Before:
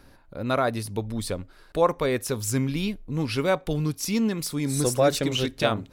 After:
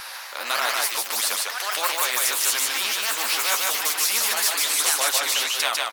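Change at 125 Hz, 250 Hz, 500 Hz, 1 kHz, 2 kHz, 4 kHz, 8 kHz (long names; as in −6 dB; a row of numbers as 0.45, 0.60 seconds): below −35 dB, −21.0 dB, −9.5 dB, +3.5 dB, +9.5 dB, +11.0 dB, +12.5 dB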